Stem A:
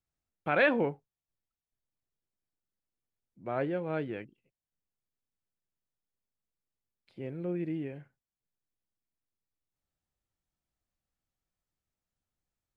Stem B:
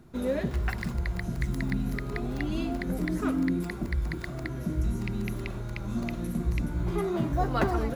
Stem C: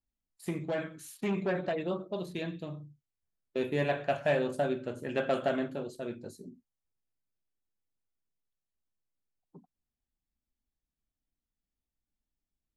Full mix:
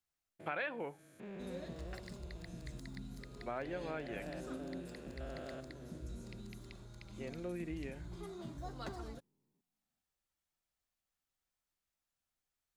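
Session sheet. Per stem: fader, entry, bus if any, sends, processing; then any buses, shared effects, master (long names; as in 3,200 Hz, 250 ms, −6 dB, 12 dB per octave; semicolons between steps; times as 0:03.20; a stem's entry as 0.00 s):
+1.5 dB, 0.00 s, no send, low-shelf EQ 460 Hz −12 dB
−18.5 dB, 1.25 s, no send, flat-topped bell 5,600 Hz +10 dB; notch filter 5,800 Hz, Q 18
−13.5 dB, 0.00 s, no send, spectrum averaged block by block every 400 ms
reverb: not used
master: downward compressor 5 to 1, threshold −37 dBFS, peak gain reduction 14.5 dB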